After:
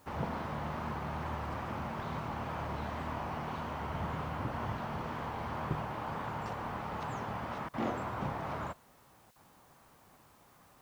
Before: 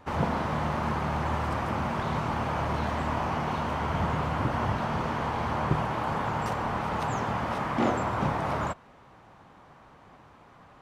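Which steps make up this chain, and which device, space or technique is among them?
worn cassette (low-pass 6.8 kHz; wow and flutter; level dips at 7.69/9.31 s, 45 ms -26 dB; white noise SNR 30 dB); trim -9 dB

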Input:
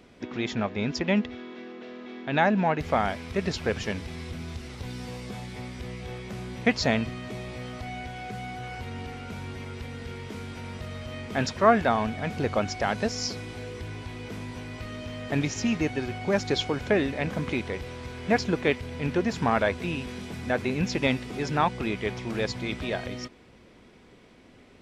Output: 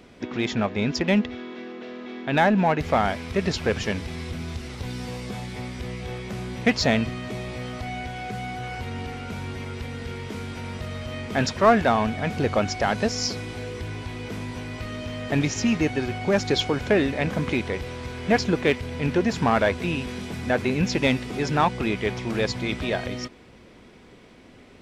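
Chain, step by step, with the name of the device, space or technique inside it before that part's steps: parallel distortion (in parallel at -4 dB: hard clipper -21 dBFS, distortion -10 dB)

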